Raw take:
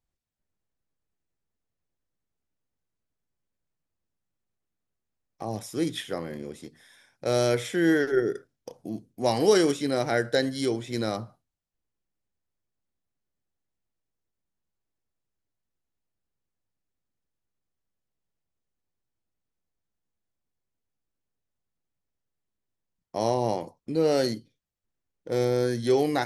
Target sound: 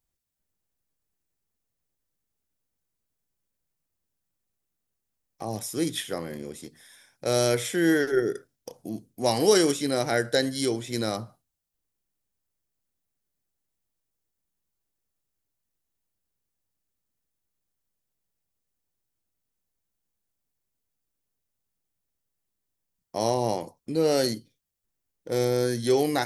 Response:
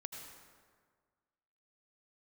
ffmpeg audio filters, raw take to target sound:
-af "highshelf=f=6.5k:g=11.5"

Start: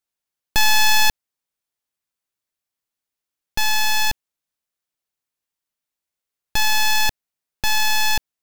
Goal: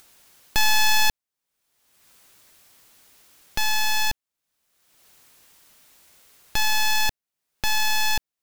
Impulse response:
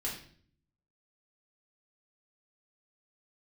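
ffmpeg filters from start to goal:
-af "acompressor=mode=upward:threshold=-25dB:ratio=2.5,volume=-3.5dB"

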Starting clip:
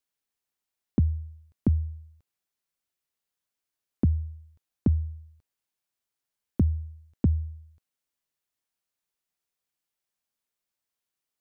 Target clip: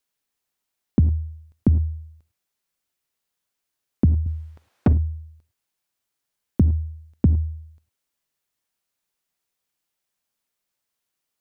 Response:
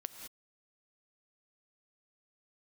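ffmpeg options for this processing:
-filter_complex "[1:a]atrim=start_sample=2205,afade=t=out:st=0.16:d=0.01,atrim=end_sample=7497[a];[0:a][a]afir=irnorm=-1:irlink=0,asettb=1/sr,asplit=3[b][c][d];[b]atrim=end=4.264[e];[c]atrim=start=4.26:end=4.93,asetpts=PTS-STARTPTS,afade=t=in:d=0.004:c=qsin,afade=t=out:st=0.666:d=0.004:c=qsin,asplit=2[f][g];[g]highpass=f=720:p=1,volume=31dB,asoftclip=type=tanh:threshold=-17dB[h];[f][h]amix=inputs=2:normalize=0,lowpass=f=1k:p=1,volume=-6dB[i];[d]atrim=start=4.926[j];[e][i]acrossfade=d=0.004:c1=hsin:c2=qsin[k];[k][j]acrossfade=d=0.004:c1=qsin:c2=hsin,volume=9dB"

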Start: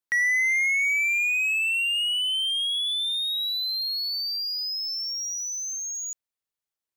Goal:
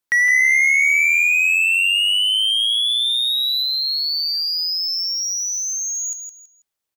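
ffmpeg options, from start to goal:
-filter_complex "[0:a]asplit=3[a][b][c];[a]afade=t=out:st=3.62:d=0.02[d];[b]asoftclip=type=hard:threshold=-26.5dB,afade=t=in:st=3.62:d=0.02,afade=t=out:st=4.56:d=0.02[e];[c]afade=t=in:st=4.56:d=0.02[f];[d][e][f]amix=inputs=3:normalize=0,asplit=2[g][h];[h]aecho=0:1:163|326|489:0.422|0.114|0.0307[i];[g][i]amix=inputs=2:normalize=0,volume=7dB"

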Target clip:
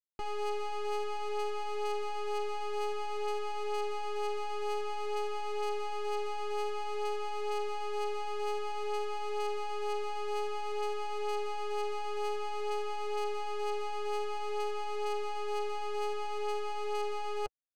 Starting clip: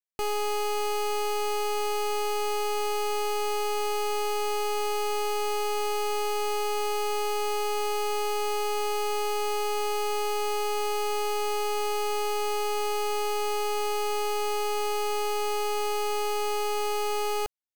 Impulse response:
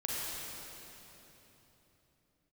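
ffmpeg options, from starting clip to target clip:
-af "flanger=delay=4.7:depth=4.9:regen=-17:speed=0.53:shape=triangular,adynamicsmooth=sensitivity=4.5:basefreq=870,volume=-3dB"

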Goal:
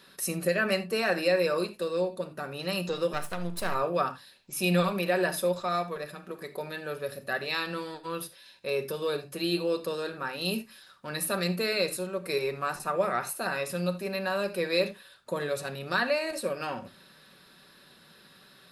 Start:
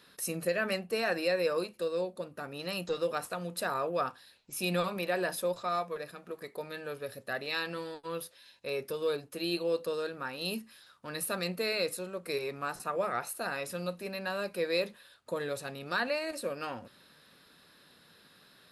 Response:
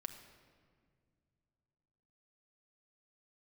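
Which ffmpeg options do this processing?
-filter_complex "[0:a]asettb=1/sr,asplit=3[a][b][c];[a]atrim=end=3.134[d];[b]atrim=start=3.13:end=3.75,asetpts=PTS-STARTPTS,afade=t=in:d=0.004:c=qsin,afade=t=out:st=0.616:d=0.004:c=qsin,aeval=exprs='if(lt(val(0),0),0.251*val(0),val(0))':c=same[e];[c]atrim=start=3.746[f];[d][e]acrossfade=d=0.004:c1=hsin:c2=qsin[g];[g][f]acrossfade=d=0.004:c1=qsin:c2=hsin[h];[1:a]atrim=start_sample=2205,afade=t=out:st=0.14:d=0.01,atrim=end_sample=6615[i];[h][i]afir=irnorm=-1:irlink=0,volume=7.5dB"

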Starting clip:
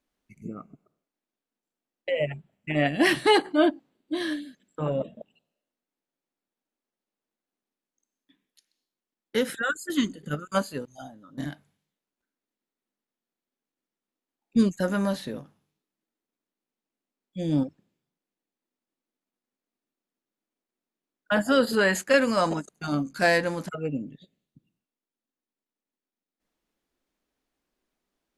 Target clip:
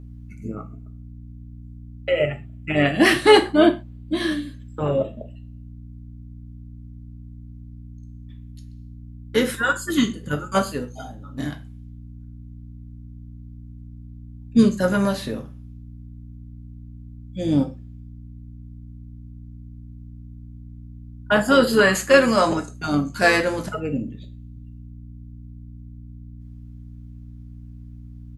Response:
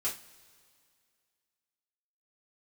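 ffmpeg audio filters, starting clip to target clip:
-filter_complex "[0:a]aeval=exprs='val(0)+0.00631*(sin(2*PI*60*n/s)+sin(2*PI*2*60*n/s)/2+sin(2*PI*3*60*n/s)/3+sin(2*PI*4*60*n/s)/4+sin(2*PI*5*60*n/s)/5)':c=same,asplit=2[a][b];[b]asetrate=29433,aresample=44100,atempo=1.49831,volume=-15dB[c];[a][c]amix=inputs=2:normalize=0,asplit=2[d][e];[1:a]atrim=start_sample=2205,atrim=end_sample=6174[f];[e][f]afir=irnorm=-1:irlink=0,volume=-4.5dB[g];[d][g]amix=inputs=2:normalize=0,volume=2dB"

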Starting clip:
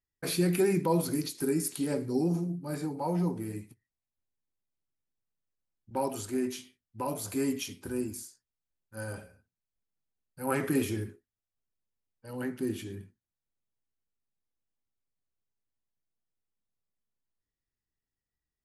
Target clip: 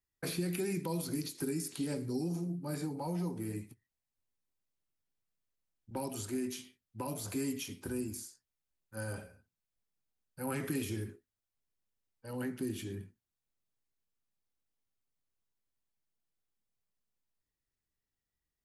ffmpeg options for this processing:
-filter_complex "[0:a]acrossover=split=250|2500|7000[a][b][c][d];[a]acompressor=threshold=-37dB:ratio=4[e];[b]acompressor=threshold=-40dB:ratio=4[f];[c]acompressor=threshold=-46dB:ratio=4[g];[d]acompressor=threshold=-45dB:ratio=4[h];[e][f][g][h]amix=inputs=4:normalize=0"

